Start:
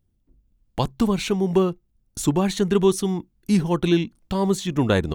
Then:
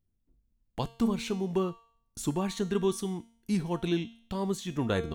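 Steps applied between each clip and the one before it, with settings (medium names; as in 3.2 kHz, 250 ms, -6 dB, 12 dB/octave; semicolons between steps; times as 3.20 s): feedback comb 230 Hz, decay 0.59 s, harmonics all, mix 70%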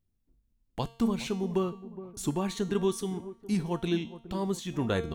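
feedback echo behind a low-pass 416 ms, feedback 46%, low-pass 1 kHz, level -14.5 dB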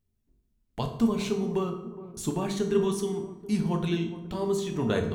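reverberation RT60 0.85 s, pre-delay 4 ms, DRR 3 dB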